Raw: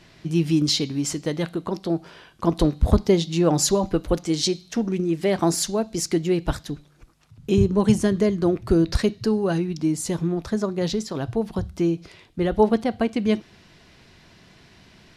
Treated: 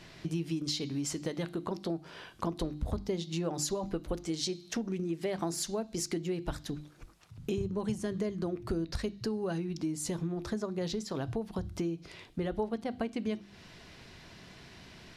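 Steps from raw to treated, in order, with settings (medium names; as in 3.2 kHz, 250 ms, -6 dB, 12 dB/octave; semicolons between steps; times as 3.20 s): hum notches 50/100/150/200/250/300/350 Hz; compression 4:1, threshold -33 dBFS, peak gain reduction 17.5 dB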